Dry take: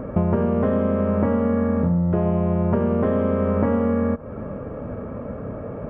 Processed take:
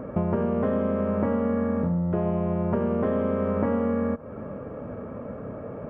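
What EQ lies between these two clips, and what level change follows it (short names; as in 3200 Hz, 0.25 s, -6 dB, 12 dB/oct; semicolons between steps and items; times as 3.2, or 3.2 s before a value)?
low shelf 69 Hz -11.5 dB; -3.5 dB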